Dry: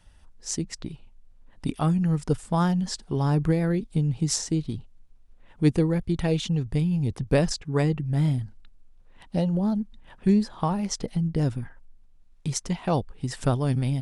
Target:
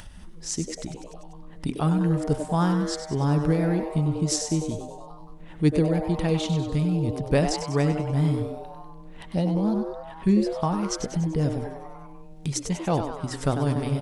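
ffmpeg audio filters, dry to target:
-filter_complex "[0:a]bandreject=f=127.7:t=h:w=4,bandreject=f=255.4:t=h:w=4,bandreject=f=383.1:t=h:w=4,bandreject=f=510.8:t=h:w=4,bandreject=f=638.5:t=h:w=4,bandreject=f=766.2:t=h:w=4,bandreject=f=893.9:t=h:w=4,bandreject=f=1.0216k:t=h:w=4,bandreject=f=1.1493k:t=h:w=4,bandreject=f=1.277k:t=h:w=4,bandreject=f=1.4047k:t=h:w=4,bandreject=f=1.5324k:t=h:w=4,bandreject=f=1.6601k:t=h:w=4,bandreject=f=1.7878k:t=h:w=4,bandreject=f=1.9155k:t=h:w=4,bandreject=f=2.0432k:t=h:w=4,bandreject=f=2.1709k:t=h:w=4,asplit=7[a][b][c][d][e][f][g];[b]adelay=97,afreqshift=150,volume=-9dB[h];[c]adelay=194,afreqshift=300,volume=-14.2dB[i];[d]adelay=291,afreqshift=450,volume=-19.4dB[j];[e]adelay=388,afreqshift=600,volume=-24.6dB[k];[f]adelay=485,afreqshift=750,volume=-29.8dB[l];[g]adelay=582,afreqshift=900,volume=-35dB[m];[a][h][i][j][k][l][m]amix=inputs=7:normalize=0,acompressor=mode=upward:threshold=-32dB:ratio=2.5"

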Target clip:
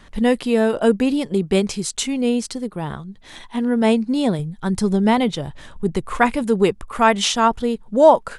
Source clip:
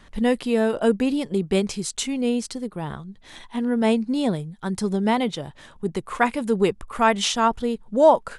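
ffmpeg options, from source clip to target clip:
-filter_complex "[0:a]asettb=1/sr,asplit=3[a][b][c];[a]atrim=end=4.394[d];[b]atrim=start=4.39:end=6.44,asetpts=PTS-STARTPTS,afade=t=in:d=0.004:c=qsin,afade=t=out:st=2.046:d=0.004:c=qsin,lowshelf=f=100:g=11[e];[c]atrim=start=6.436[f];[d][e]acrossfade=d=0.004:c1=hsin:c2=qsin[g];[g][f]acrossfade=d=0.004:c1=qsin:c2=hsin,volume=3.5dB"

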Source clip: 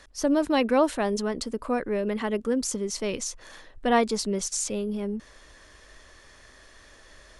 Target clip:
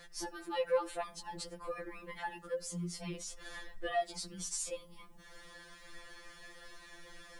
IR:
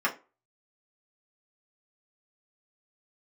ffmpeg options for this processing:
-filter_complex "[0:a]equalizer=f=6.1k:t=o:w=0.37:g=-5.5,acompressor=threshold=-39dB:ratio=2,asplit=3[a][b][c];[a]afade=t=out:st=2.59:d=0.02[d];[b]aeval=exprs='val(0)*sin(2*PI*26*n/s)':c=same,afade=t=in:st=2.59:d=0.02,afade=t=out:st=3.27:d=0.02[e];[c]afade=t=in:st=3.27:d=0.02[f];[d][e][f]amix=inputs=3:normalize=0,acrusher=bits=11:mix=0:aa=0.000001,asplit=2[g][h];[1:a]atrim=start_sample=2205,adelay=71[i];[h][i]afir=irnorm=-1:irlink=0,volume=-29dB[j];[g][j]amix=inputs=2:normalize=0,afftfilt=real='re*2.83*eq(mod(b,8),0)':imag='im*2.83*eq(mod(b,8),0)':win_size=2048:overlap=0.75,volume=1.5dB"

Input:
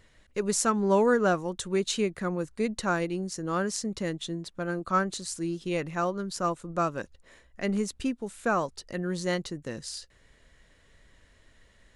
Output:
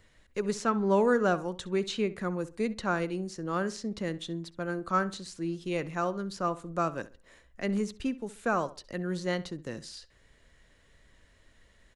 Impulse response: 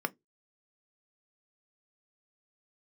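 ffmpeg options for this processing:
-filter_complex "[0:a]acrossover=split=320|4900[a][b][c];[c]acompressor=threshold=-50dB:ratio=6[d];[a][b][d]amix=inputs=3:normalize=0,asplit=2[e][f];[f]adelay=66,lowpass=f=2.9k:p=1,volume=-16dB,asplit=2[g][h];[h]adelay=66,lowpass=f=2.9k:p=1,volume=0.31,asplit=2[i][j];[j]adelay=66,lowpass=f=2.9k:p=1,volume=0.31[k];[e][g][i][k]amix=inputs=4:normalize=0,volume=-2dB"

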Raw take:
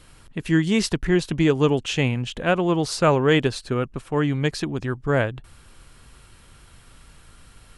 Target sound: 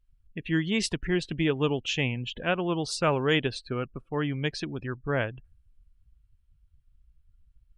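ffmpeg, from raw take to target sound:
-af "equalizer=f=2.8k:t=o:w=1.4:g=5.5,afftdn=nr=34:nf=-35,adynamicequalizer=threshold=0.0112:dfrequency=5900:dqfactor=0.7:tfrequency=5900:tqfactor=0.7:attack=5:release=100:ratio=0.375:range=3:mode=boostabove:tftype=highshelf,volume=-7.5dB"

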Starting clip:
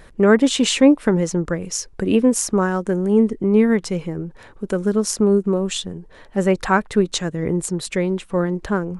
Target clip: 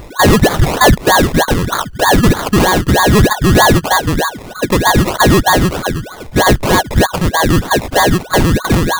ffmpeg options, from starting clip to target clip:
-filter_complex "[0:a]afftfilt=real='real(if(lt(b,272),68*(eq(floor(b/68),0)*3+eq(floor(b/68),1)*0+eq(floor(b/68),2)*1+eq(floor(b/68),3)*2)+mod(b,68),b),0)':imag='imag(if(lt(b,272),68*(eq(floor(b/68),0)*3+eq(floor(b/68),1)*0+eq(floor(b/68),2)*1+eq(floor(b/68),3)*2)+mod(b,68),b),0)':win_size=2048:overlap=0.75,asplit=2[a][b];[b]highpass=f=720:p=1,volume=21dB,asoftclip=type=tanh:threshold=-0.5dB[c];[a][c]amix=inputs=2:normalize=0,lowpass=f=1.6k:p=1,volume=-6dB,acrusher=samples=23:mix=1:aa=0.000001:lfo=1:lforange=13.8:lforate=3.2,volume=2.5dB"

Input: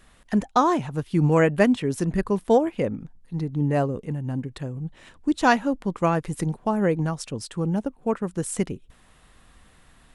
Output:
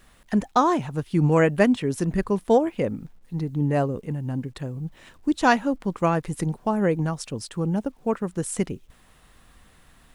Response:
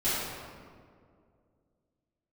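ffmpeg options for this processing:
-af "acrusher=bits=10:mix=0:aa=0.000001"

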